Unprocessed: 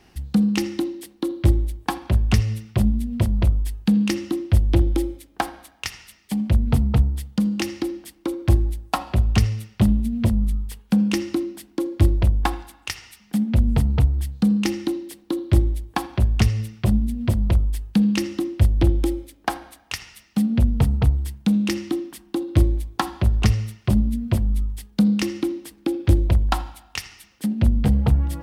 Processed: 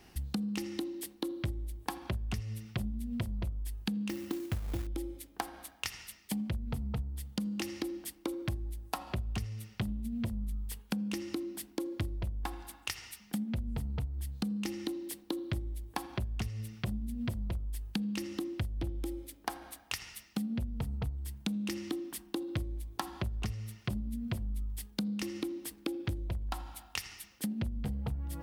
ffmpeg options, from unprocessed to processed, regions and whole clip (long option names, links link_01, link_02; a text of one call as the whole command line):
ffmpeg -i in.wav -filter_complex "[0:a]asettb=1/sr,asplit=3[link_01][link_02][link_03];[link_01]atrim=end=4.094[link_04];[link_02]atrim=start=4.09:end=4.87,asetpts=PTS-STARTPTS,afade=type=in:duration=0.004:curve=qsin,afade=type=out:start_time=0.776:duration=0.004:curve=qsin,highshelf=frequency=3900:gain=-11,acrusher=bits=4:mode=log:mix=0:aa=0.000001[link_05];[link_03]atrim=start=4.866[link_06];[link_04][link_05]acrossfade=duration=0.004:curve1=hsin:curve2=qsin[link_07];[link_07][link_06]acrossfade=duration=0.004:curve1=qsin:curve2=hsin,highshelf=frequency=10000:gain=8.5,acompressor=threshold=-28dB:ratio=12,volume=-4dB" out.wav